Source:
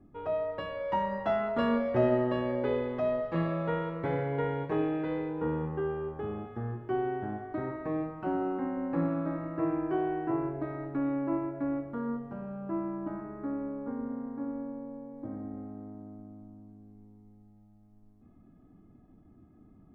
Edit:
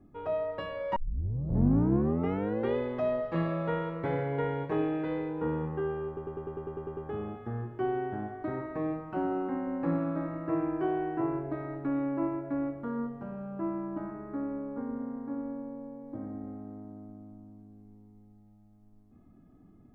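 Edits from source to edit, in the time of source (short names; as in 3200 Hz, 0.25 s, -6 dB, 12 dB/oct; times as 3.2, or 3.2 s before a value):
0.96 tape start 1.81 s
6.07 stutter 0.10 s, 10 plays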